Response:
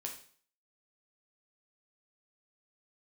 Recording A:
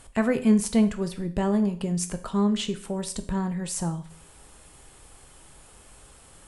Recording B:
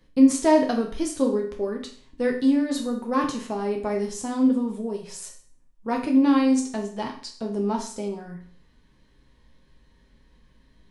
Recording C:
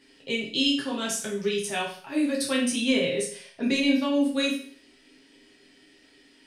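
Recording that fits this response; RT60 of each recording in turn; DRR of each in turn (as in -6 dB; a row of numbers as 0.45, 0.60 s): B; 0.50, 0.50, 0.50 s; 8.0, 0.5, -4.5 dB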